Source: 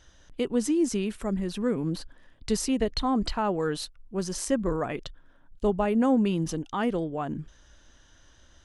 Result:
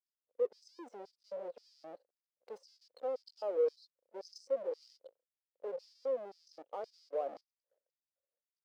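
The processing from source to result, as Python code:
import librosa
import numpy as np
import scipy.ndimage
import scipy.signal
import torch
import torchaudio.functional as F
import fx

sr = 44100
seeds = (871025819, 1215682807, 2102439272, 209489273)

y = fx.halfwave_hold(x, sr)
y = fx.high_shelf(y, sr, hz=4200.0, db=-10.0)
y = fx.level_steps(y, sr, step_db=16)
y = fx.filter_lfo_highpass(y, sr, shape='square', hz=1.9, low_hz=520.0, high_hz=4900.0, q=5.8)
y = fx.spectral_expand(y, sr, expansion=1.5)
y = F.gain(torch.from_numpy(y), -5.5).numpy()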